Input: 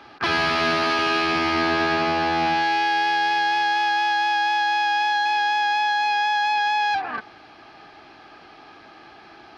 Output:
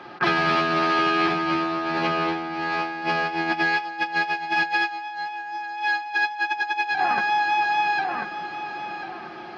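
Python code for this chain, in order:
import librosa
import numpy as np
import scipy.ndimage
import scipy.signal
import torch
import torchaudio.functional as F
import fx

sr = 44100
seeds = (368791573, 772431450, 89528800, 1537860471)

p1 = scipy.signal.sosfilt(scipy.signal.butter(2, 85.0, 'highpass', fs=sr, output='sos'), x)
p2 = fx.high_shelf(p1, sr, hz=2900.0, db=-10.5)
p3 = p2 + fx.echo_feedback(p2, sr, ms=1042, feedback_pct=27, wet_db=-4.5, dry=0)
p4 = fx.over_compress(p3, sr, threshold_db=-25.0, ratio=-0.5)
p5 = p4 + 0.65 * np.pad(p4, (int(5.6 * sr / 1000.0), 0))[:len(p4)]
y = p5 * librosa.db_to_amplitude(1.5)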